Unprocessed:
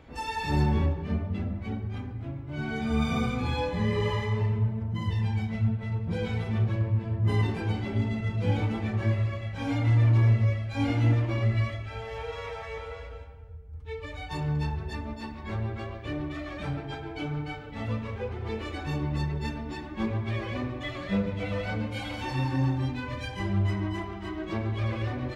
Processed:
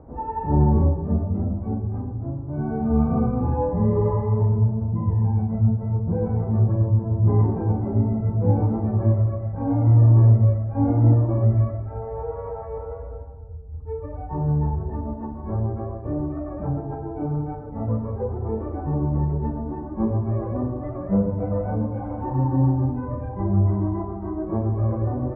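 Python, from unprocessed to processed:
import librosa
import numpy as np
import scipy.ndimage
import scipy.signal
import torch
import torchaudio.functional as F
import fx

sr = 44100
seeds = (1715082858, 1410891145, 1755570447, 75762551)

y = scipy.signal.sosfilt(scipy.signal.cheby2(4, 70, 4200.0, 'lowpass', fs=sr, output='sos'), x)
y = F.gain(torch.from_numpy(y), 7.0).numpy()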